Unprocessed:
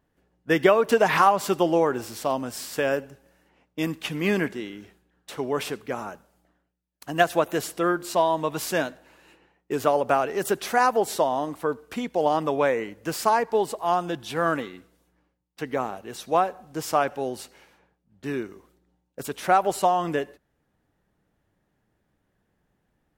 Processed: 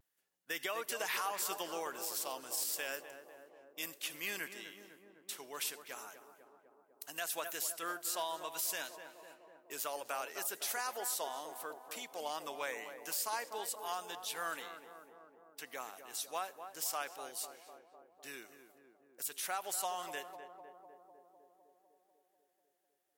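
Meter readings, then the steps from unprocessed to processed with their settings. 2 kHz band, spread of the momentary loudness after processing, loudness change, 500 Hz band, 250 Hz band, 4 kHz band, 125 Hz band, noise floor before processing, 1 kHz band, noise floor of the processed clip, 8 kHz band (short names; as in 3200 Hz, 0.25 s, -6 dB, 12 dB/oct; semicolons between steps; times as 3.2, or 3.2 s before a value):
-12.5 dB, 17 LU, -14.5 dB, -21.5 dB, -26.0 dB, -6.5 dB, -31.5 dB, -74 dBFS, -17.5 dB, -78 dBFS, -1.5 dB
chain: differentiator; tape echo 0.25 s, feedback 82%, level -8 dB, low-pass 1100 Hz; limiter -27.5 dBFS, peak gain reduction 10 dB; vibrato 0.37 Hz 19 cents; gain +1 dB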